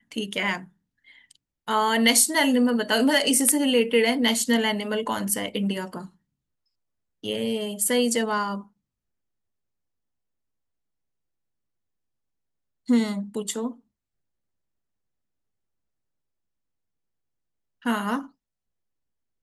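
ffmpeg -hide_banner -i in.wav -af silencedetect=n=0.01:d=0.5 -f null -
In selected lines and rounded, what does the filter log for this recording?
silence_start: 0.65
silence_end: 1.31 | silence_duration: 0.67
silence_start: 6.07
silence_end: 7.24 | silence_duration: 1.17
silence_start: 8.62
silence_end: 12.88 | silence_duration: 4.26
silence_start: 13.72
silence_end: 17.85 | silence_duration: 4.13
silence_start: 18.27
silence_end: 19.42 | silence_duration: 1.16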